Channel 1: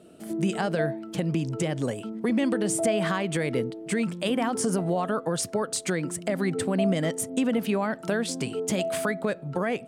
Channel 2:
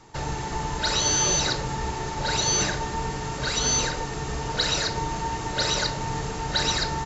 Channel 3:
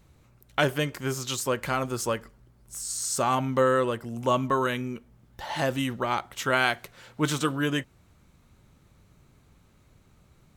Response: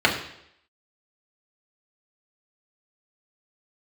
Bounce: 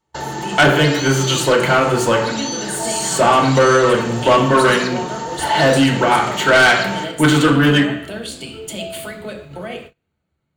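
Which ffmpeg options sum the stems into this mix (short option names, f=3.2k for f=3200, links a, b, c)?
-filter_complex "[0:a]lowshelf=f=96:g=-7,aexciter=amount=8.5:drive=3.4:freq=2.6k,equalizer=f=6.4k:w=0.63:g=-12.5,volume=-16dB,asplit=2[a][b];[b]volume=-5dB[c];[1:a]highpass=180,acompressor=threshold=-29dB:ratio=6,volume=3dB,asplit=2[d][e];[e]volume=-20dB[f];[2:a]bandreject=f=60:t=h:w=6,bandreject=f=120:t=h:w=6,volume=0.5dB,asplit=2[g][h];[h]volume=-4dB[i];[3:a]atrim=start_sample=2205[j];[c][f][i]amix=inputs=3:normalize=0[k];[k][j]afir=irnorm=-1:irlink=0[l];[a][d][g][l]amix=inputs=4:normalize=0,asoftclip=type=tanh:threshold=-6dB,agate=range=-29dB:threshold=-36dB:ratio=16:detection=peak,aexciter=amount=1.6:drive=4.3:freq=7.6k"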